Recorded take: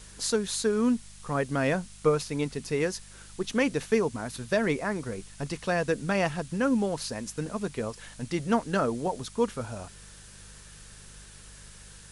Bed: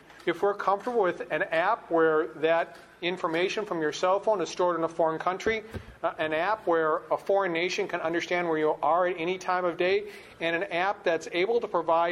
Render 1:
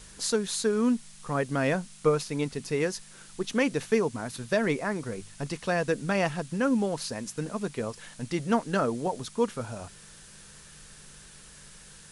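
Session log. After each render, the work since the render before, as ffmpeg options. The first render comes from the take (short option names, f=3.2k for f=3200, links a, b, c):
-af "bandreject=f=50:t=h:w=4,bandreject=f=100:t=h:w=4"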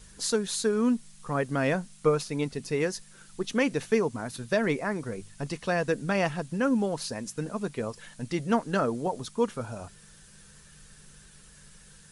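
-af "afftdn=nr=6:nf=-51"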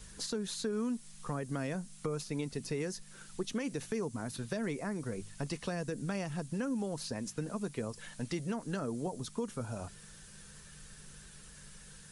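-filter_complex "[0:a]alimiter=limit=-18.5dB:level=0:latency=1:release=68,acrossover=split=340|5500[a][b][c];[a]acompressor=threshold=-36dB:ratio=4[d];[b]acompressor=threshold=-41dB:ratio=4[e];[c]acompressor=threshold=-46dB:ratio=4[f];[d][e][f]amix=inputs=3:normalize=0"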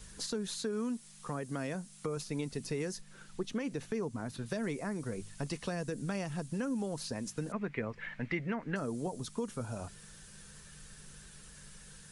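-filter_complex "[0:a]asettb=1/sr,asplit=3[a][b][c];[a]atrim=end=0.584[d];[b]atrim=start=0.58:end=2.17,asetpts=PTS-STARTPTS,afade=t=in:d=0.004:c=qsin,afade=t=out:st=1.586:d=0.004:c=qsin,lowshelf=f=76:g=-11.5[e];[c]atrim=start=2.166[f];[d][e]acrossfade=d=0.004:c1=hsin:c2=qsin[g];[g][f]acrossfade=d=0.004:c1=qsin:c2=hsin,asettb=1/sr,asplit=3[h][i][j];[h]atrim=end=3.014[k];[i]atrim=start=3.01:end=4.46,asetpts=PTS-STARTPTS,afade=t=in:d=0.004:c=qsin,afade=t=out:st=1.446:d=0.004:c=qsin,highshelf=f=5.4k:g=-9.5[l];[j]atrim=start=4.456[m];[k][l]acrossfade=d=0.004:c1=hsin:c2=qsin[n];[n][m]acrossfade=d=0.004:c1=qsin:c2=hsin,asettb=1/sr,asplit=3[o][p][q];[o]atrim=end=7.524[r];[p]atrim=start=7.52:end=8.76,asetpts=PTS-STARTPTS,afade=t=in:d=0.004:c=qsin,afade=t=out:st=1.236:d=0.004:c=qsin,lowpass=f=2.1k:t=q:w=4[s];[q]atrim=start=8.756[t];[r][s]acrossfade=d=0.004:c1=hsin:c2=qsin[u];[u][t]acrossfade=d=0.004:c1=qsin:c2=hsin"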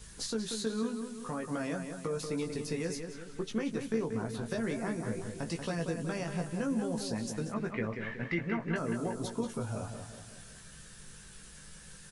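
-filter_complex "[0:a]asplit=2[a][b];[b]adelay=18,volume=-4.5dB[c];[a][c]amix=inputs=2:normalize=0,asplit=2[d][e];[e]adelay=185,lowpass=f=4k:p=1,volume=-6.5dB,asplit=2[f][g];[g]adelay=185,lowpass=f=4k:p=1,volume=0.51,asplit=2[h][i];[i]adelay=185,lowpass=f=4k:p=1,volume=0.51,asplit=2[j][k];[k]adelay=185,lowpass=f=4k:p=1,volume=0.51,asplit=2[l][m];[m]adelay=185,lowpass=f=4k:p=1,volume=0.51,asplit=2[n][o];[o]adelay=185,lowpass=f=4k:p=1,volume=0.51[p];[d][f][h][j][l][n][p]amix=inputs=7:normalize=0"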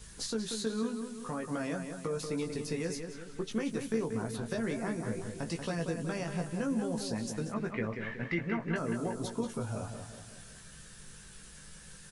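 -filter_complex "[0:a]asettb=1/sr,asplit=3[a][b][c];[a]atrim=end=3.514[d];[b]atrim=start=3.51:end=4.37,asetpts=PTS-STARTPTS,afade=t=in:d=0.004:c=qsin,afade=t=out:st=0.856:d=0.004:c=qsin,highshelf=f=9.5k:g=10.5[e];[c]atrim=start=4.366[f];[d][e]acrossfade=d=0.004:c1=hsin:c2=qsin[g];[g][f]acrossfade=d=0.004:c1=qsin:c2=hsin"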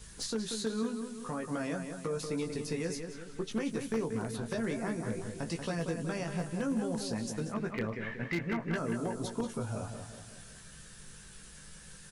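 -af "aeval=exprs='0.0596*(abs(mod(val(0)/0.0596+3,4)-2)-1)':c=same"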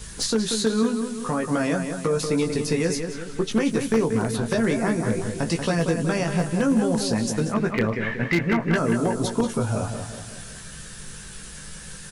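-af "volume=12dB"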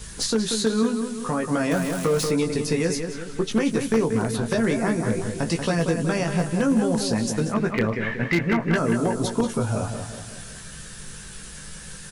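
-filter_complex "[0:a]asettb=1/sr,asplit=3[a][b][c];[a]atrim=end=1.714[d];[b]atrim=start=1.71:end=2.31,asetpts=PTS-STARTPTS,afade=t=in:d=0.004:c=qsin,afade=t=out:st=0.596:d=0.004:c=qsin,aeval=exprs='val(0)+0.5*0.0376*sgn(val(0))':c=same[e];[c]atrim=start=2.306[f];[d][e]acrossfade=d=0.004:c1=hsin:c2=qsin[g];[g][f]acrossfade=d=0.004:c1=qsin:c2=hsin"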